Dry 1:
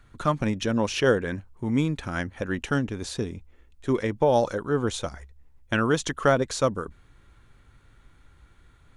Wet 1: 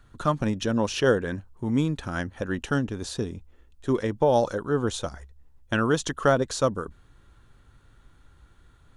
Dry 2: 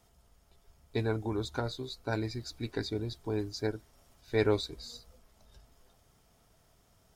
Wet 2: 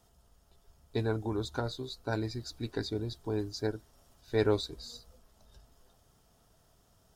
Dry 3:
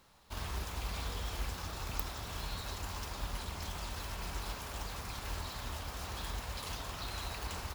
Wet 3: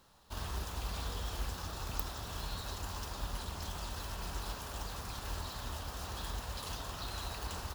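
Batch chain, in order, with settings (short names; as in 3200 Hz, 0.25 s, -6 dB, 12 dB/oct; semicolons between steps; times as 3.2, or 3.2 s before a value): bell 2200 Hz -7.5 dB 0.34 oct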